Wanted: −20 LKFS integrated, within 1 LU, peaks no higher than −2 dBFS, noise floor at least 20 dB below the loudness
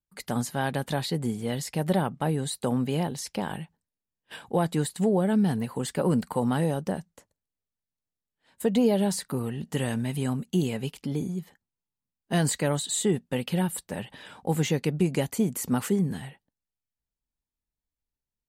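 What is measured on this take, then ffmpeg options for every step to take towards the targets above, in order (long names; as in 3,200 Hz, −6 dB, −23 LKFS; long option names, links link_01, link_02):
integrated loudness −28.0 LKFS; sample peak −12.5 dBFS; target loudness −20.0 LKFS
→ -af "volume=8dB"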